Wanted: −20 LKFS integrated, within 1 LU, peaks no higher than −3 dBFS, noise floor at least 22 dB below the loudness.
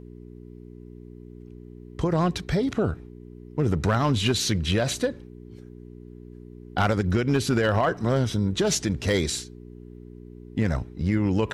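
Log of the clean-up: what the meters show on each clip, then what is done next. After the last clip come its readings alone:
share of clipped samples 0.4%; peaks flattened at −14.5 dBFS; mains hum 60 Hz; hum harmonics up to 420 Hz; level of the hum −40 dBFS; integrated loudness −25.0 LKFS; sample peak −14.5 dBFS; target loudness −20.0 LKFS
→ clipped peaks rebuilt −14.5 dBFS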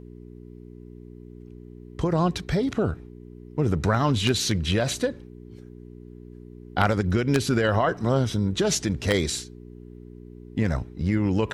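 share of clipped samples 0.0%; mains hum 60 Hz; hum harmonics up to 420 Hz; level of the hum −40 dBFS
→ hum removal 60 Hz, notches 7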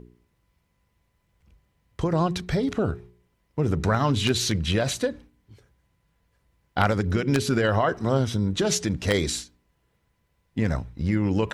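mains hum none found; integrated loudness −25.0 LKFS; sample peak −6.0 dBFS; target loudness −20.0 LKFS
→ level +5 dB
brickwall limiter −3 dBFS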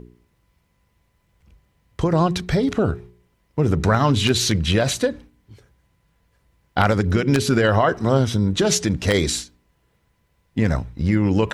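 integrated loudness −20.0 LKFS; sample peak −3.0 dBFS; background noise floor −66 dBFS

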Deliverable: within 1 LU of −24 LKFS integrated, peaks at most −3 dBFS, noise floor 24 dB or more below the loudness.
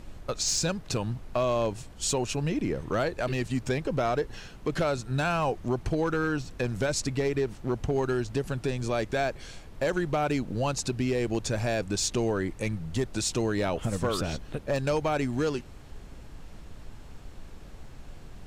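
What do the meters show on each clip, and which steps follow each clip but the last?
share of clipped samples 0.6%; peaks flattened at −19.5 dBFS; background noise floor −46 dBFS; target noise floor −54 dBFS; integrated loudness −29.5 LKFS; sample peak −19.5 dBFS; target loudness −24.0 LKFS
→ clipped peaks rebuilt −19.5 dBFS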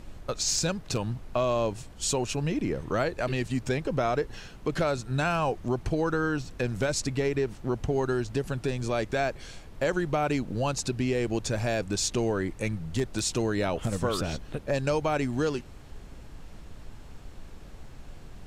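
share of clipped samples 0.0%; background noise floor −46 dBFS; target noise floor −53 dBFS
→ noise reduction from a noise print 7 dB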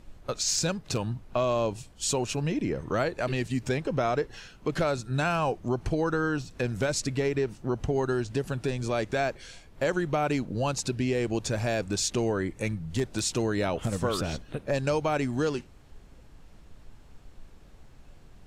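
background noise floor −52 dBFS; target noise floor −53 dBFS
→ noise reduction from a noise print 6 dB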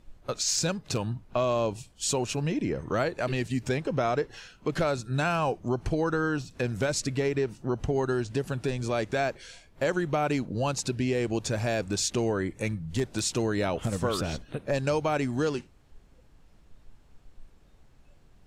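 background noise floor −57 dBFS; integrated loudness −29.0 LKFS; sample peak −13.0 dBFS; target loudness −24.0 LKFS
→ level +5 dB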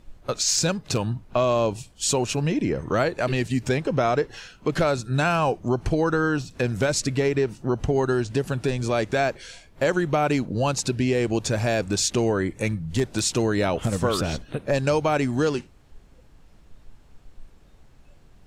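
integrated loudness −24.0 LKFS; sample peak −8.0 dBFS; background noise floor −52 dBFS

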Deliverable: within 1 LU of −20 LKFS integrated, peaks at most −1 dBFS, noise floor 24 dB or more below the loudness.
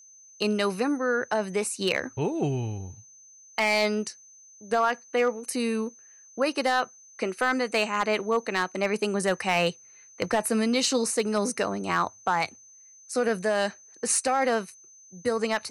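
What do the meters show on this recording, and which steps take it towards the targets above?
share of clipped samples 0.3%; peaks flattened at −15.0 dBFS; interfering tone 6,200 Hz; level of the tone −50 dBFS; integrated loudness −27.0 LKFS; sample peak −15.0 dBFS; target loudness −20.0 LKFS
→ clipped peaks rebuilt −15 dBFS
notch filter 6,200 Hz, Q 30
level +7 dB

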